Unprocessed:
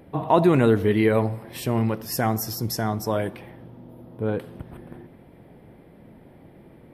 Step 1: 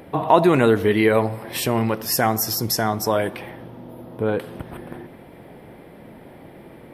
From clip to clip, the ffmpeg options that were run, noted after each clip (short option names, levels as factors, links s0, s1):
-filter_complex "[0:a]lowshelf=f=300:g=-9,asplit=2[s0][s1];[s1]acompressor=threshold=0.0224:ratio=6,volume=1.12[s2];[s0][s2]amix=inputs=2:normalize=0,volume=1.58"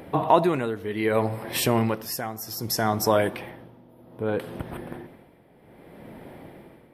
-af "tremolo=f=0.64:d=0.8"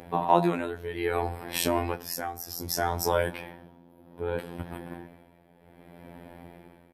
-filter_complex "[0:a]afftfilt=real='hypot(re,im)*cos(PI*b)':imag='0':win_size=2048:overlap=0.75,asplit=2[s0][s1];[s1]adelay=22,volume=0.299[s2];[s0][s2]amix=inputs=2:normalize=0"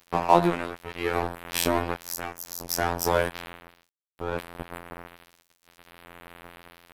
-af "areverse,acompressor=mode=upward:threshold=0.0282:ratio=2.5,areverse,aeval=exprs='sgn(val(0))*max(abs(val(0))-0.0211,0)':c=same,volume=1.58"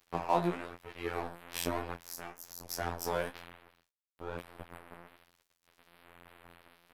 -af "flanger=delay=8.6:depth=9.1:regen=43:speed=1.1:shape=triangular,volume=0.473"